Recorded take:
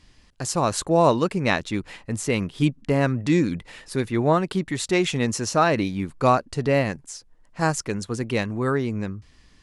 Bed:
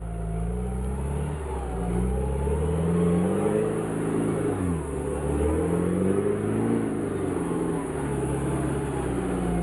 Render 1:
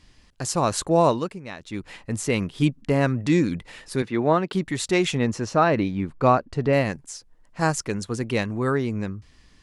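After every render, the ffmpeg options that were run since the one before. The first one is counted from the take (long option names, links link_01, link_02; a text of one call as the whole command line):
ffmpeg -i in.wav -filter_complex "[0:a]asettb=1/sr,asplit=3[link_01][link_02][link_03];[link_01]atrim=end=4.024[link_04];[link_02]atrim=start=4.02:end=4.53,asetpts=PTS-STARTPTS,afade=type=in:duration=0.004:curve=qsin,afade=type=out:start_time=0.506:duration=0.004:curve=qsin,highpass=160,lowpass=4600[link_05];[link_03]atrim=start=4.526[link_06];[link_04][link_05]acrossfade=duration=0.004:curve1=hsin:curve2=qsin[link_07];[link_07][link_06]acrossfade=duration=0.004:curve1=qsin:curve2=hsin,asettb=1/sr,asplit=3[link_08][link_09][link_10];[link_08]atrim=end=5.154[link_11];[link_09]atrim=start=5.15:end=6.73,asetpts=PTS-STARTPTS,afade=type=in:duration=0.004:curve=qsin,afade=type=out:start_time=1.576:duration=0.004:curve=qsin,aemphasis=mode=reproduction:type=75fm[link_12];[link_10]atrim=start=6.726[link_13];[link_11][link_12]acrossfade=duration=0.004:curve1=hsin:curve2=qsin[link_14];[link_14][link_13]acrossfade=duration=0.004:curve1=qsin:curve2=hsin,asplit=3[link_15][link_16][link_17];[link_15]atrim=end=1.42,asetpts=PTS-STARTPTS,afade=type=out:start_time=0.99:duration=0.43:silence=0.16788[link_18];[link_16]atrim=start=1.42:end=1.56,asetpts=PTS-STARTPTS,volume=-15.5dB[link_19];[link_17]atrim=start=1.56,asetpts=PTS-STARTPTS,afade=type=in:duration=0.43:silence=0.16788[link_20];[link_18][link_19][link_20]concat=n=3:v=0:a=1" out.wav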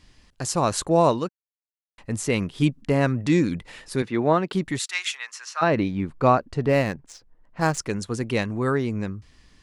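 ffmpeg -i in.wav -filter_complex "[0:a]asplit=3[link_01][link_02][link_03];[link_01]afade=type=out:start_time=4.78:duration=0.02[link_04];[link_02]highpass=frequency=1200:width=0.5412,highpass=frequency=1200:width=1.3066,afade=type=in:start_time=4.78:duration=0.02,afade=type=out:start_time=5.61:duration=0.02[link_05];[link_03]afade=type=in:start_time=5.61:duration=0.02[link_06];[link_04][link_05][link_06]amix=inputs=3:normalize=0,asettb=1/sr,asplit=3[link_07][link_08][link_09];[link_07]atrim=end=6.654[link_10];[link_08]atrim=start=6.65:end=7.78,asetpts=PTS-STARTPTS,afade=type=in:duration=0.004:curve=qsin,afade=type=out:start_time=1.126:duration=0.004:curve=qsin,adynamicsmooth=sensitivity=7.5:basefreq=2500[link_11];[link_09]atrim=start=7.776[link_12];[link_10][link_11]acrossfade=duration=0.004:curve1=hsin:curve2=qsin[link_13];[link_13][link_12]acrossfade=duration=0.004:curve1=qsin:curve2=hsin,asplit=3[link_14][link_15][link_16];[link_14]atrim=end=1.29,asetpts=PTS-STARTPTS,afade=type=out:start_time=1.286:duration=0.004:curve=hsin[link_17];[link_15]atrim=start=1.29:end=1.98,asetpts=PTS-STARTPTS,volume=0[link_18];[link_16]atrim=start=1.98,asetpts=PTS-STARTPTS,afade=type=in:duration=0.004:curve=hsin[link_19];[link_17][link_18][link_19]concat=n=3:v=0:a=1" out.wav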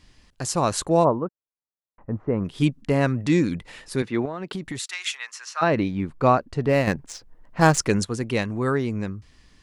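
ffmpeg -i in.wav -filter_complex "[0:a]asplit=3[link_01][link_02][link_03];[link_01]afade=type=out:start_time=1.03:duration=0.02[link_04];[link_02]lowpass=frequency=1300:width=0.5412,lowpass=frequency=1300:width=1.3066,afade=type=in:start_time=1.03:duration=0.02,afade=type=out:start_time=2.44:duration=0.02[link_05];[link_03]afade=type=in:start_time=2.44:duration=0.02[link_06];[link_04][link_05][link_06]amix=inputs=3:normalize=0,asettb=1/sr,asplit=3[link_07][link_08][link_09];[link_07]atrim=end=4.254[link_10];[link_08]atrim=start=4.25:end=5.03,asetpts=PTS-STARTPTS,afade=type=in:duration=0.004:curve=qsin,afade=type=out:start_time=0.776:duration=0.004:curve=qsin,acompressor=threshold=-26dB:ratio=12:attack=3.2:release=140:knee=1:detection=peak[link_11];[link_09]atrim=start=5.026[link_12];[link_10][link_11]acrossfade=duration=0.004:curve1=hsin:curve2=qsin[link_13];[link_13][link_12]acrossfade=duration=0.004:curve1=qsin:curve2=hsin,asettb=1/sr,asplit=3[link_14][link_15][link_16];[link_14]atrim=end=6.874[link_17];[link_15]atrim=start=6.87:end=8.05,asetpts=PTS-STARTPTS,afade=type=in:duration=0.004:curve=qsin,afade=type=out:start_time=1.176:duration=0.004:curve=qsin,acontrast=69[link_18];[link_16]atrim=start=8.046[link_19];[link_17][link_18]acrossfade=duration=0.004:curve1=hsin:curve2=qsin[link_20];[link_20][link_19]acrossfade=duration=0.004:curve1=qsin:curve2=hsin" out.wav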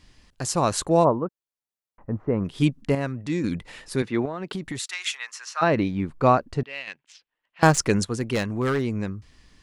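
ffmpeg -i in.wav -filter_complex "[0:a]asettb=1/sr,asplit=3[link_01][link_02][link_03];[link_01]atrim=end=6.634[link_04];[link_02]atrim=start=6.63:end=7.63,asetpts=PTS-STARTPTS,afade=type=in:duration=0.004:curve=qsin,afade=type=out:start_time=0.996:duration=0.004:curve=qsin,bandpass=frequency=2900:width_type=q:width=2.8[link_05];[link_03]atrim=start=7.626[link_06];[link_04][link_05]acrossfade=duration=0.004:curve1=hsin:curve2=qsin[link_07];[link_07][link_06]acrossfade=duration=0.004:curve1=qsin:curve2=hsin,asettb=1/sr,asplit=3[link_08][link_09][link_10];[link_08]atrim=end=8.174[link_11];[link_09]atrim=start=8.17:end=8.85,asetpts=PTS-STARTPTS,afade=type=in:duration=0.004:curve=qsin,afade=type=out:start_time=0.676:duration=0.004:curve=qsin,aeval=exprs='0.15*(abs(mod(val(0)/0.15+3,4)-2)-1)':channel_layout=same[link_12];[link_10]atrim=start=8.846[link_13];[link_11][link_12]acrossfade=duration=0.004:curve1=hsin:curve2=qsin[link_14];[link_14][link_13]acrossfade=duration=0.004:curve1=qsin:curve2=hsin,asplit=3[link_15][link_16][link_17];[link_15]atrim=end=2.952[link_18];[link_16]atrim=start=2.948:end=3.442,asetpts=PTS-STARTPTS,volume=-7dB[link_19];[link_17]atrim=start=3.438[link_20];[link_18][link_19]acrossfade=duration=0.004:curve1=hsin:curve2=hsin[link_21];[link_21][link_20]acrossfade=duration=0.004:curve1=hsin:curve2=hsin" out.wav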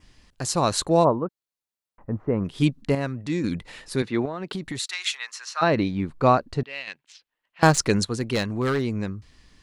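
ffmpeg -i in.wav -af "adynamicequalizer=threshold=0.00316:dfrequency=4100:dqfactor=4.3:tfrequency=4100:tqfactor=4.3:attack=5:release=100:ratio=0.375:range=3.5:mode=boostabove:tftype=bell" out.wav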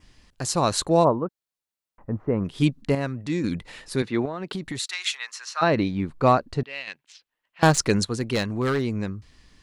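ffmpeg -i in.wav -af "asoftclip=type=hard:threshold=-8dB" out.wav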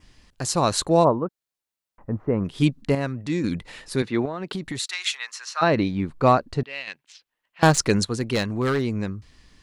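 ffmpeg -i in.wav -af "volume=1dB" out.wav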